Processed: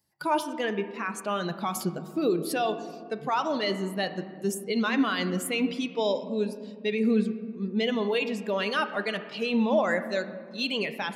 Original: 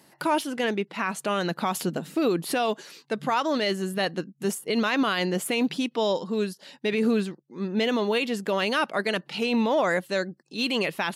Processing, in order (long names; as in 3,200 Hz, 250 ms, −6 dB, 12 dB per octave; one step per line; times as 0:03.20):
spectral dynamics exaggerated over time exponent 1.5
on a send: low-pass filter 3,600 Hz 12 dB per octave + convolution reverb RT60 2.1 s, pre-delay 5 ms, DRR 9 dB